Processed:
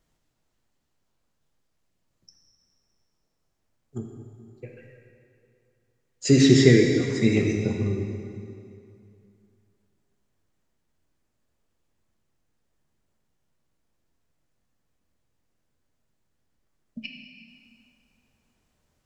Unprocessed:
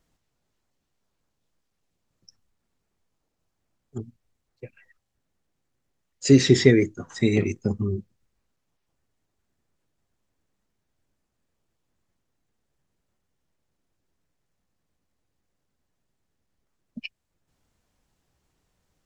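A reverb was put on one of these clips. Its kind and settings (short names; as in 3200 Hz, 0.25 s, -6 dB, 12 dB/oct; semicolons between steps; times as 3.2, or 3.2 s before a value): plate-style reverb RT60 2.5 s, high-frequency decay 0.85×, DRR 1 dB; gain -1.5 dB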